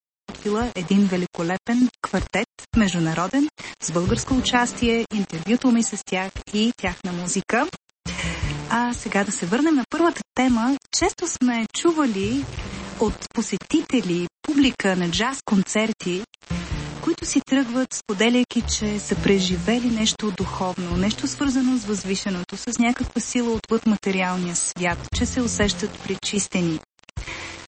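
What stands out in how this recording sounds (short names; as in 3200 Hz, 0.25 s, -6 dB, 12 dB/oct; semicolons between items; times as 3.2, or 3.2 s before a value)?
tremolo saw down 1.1 Hz, depth 50%; a quantiser's noise floor 6-bit, dither none; MP3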